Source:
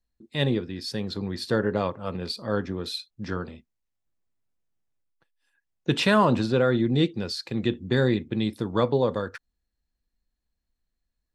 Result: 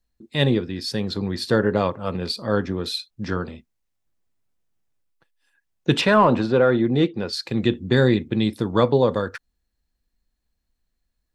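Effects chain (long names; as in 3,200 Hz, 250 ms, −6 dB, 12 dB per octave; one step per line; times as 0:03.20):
0:06.01–0:07.33: mid-hump overdrive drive 10 dB, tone 1,000 Hz, clips at −7.5 dBFS
level +5 dB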